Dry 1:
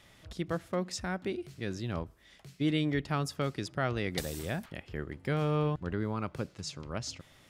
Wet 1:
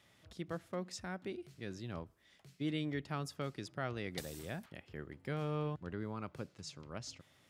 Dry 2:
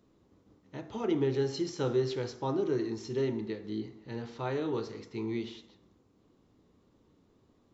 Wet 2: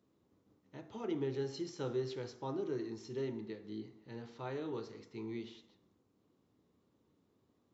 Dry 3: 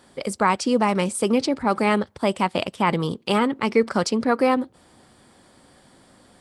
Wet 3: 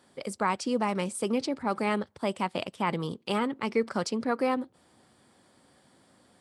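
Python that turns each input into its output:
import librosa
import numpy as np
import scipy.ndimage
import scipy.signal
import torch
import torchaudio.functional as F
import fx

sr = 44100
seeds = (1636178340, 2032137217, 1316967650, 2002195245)

y = scipy.signal.sosfilt(scipy.signal.butter(2, 80.0, 'highpass', fs=sr, output='sos'), x)
y = y * librosa.db_to_amplitude(-8.0)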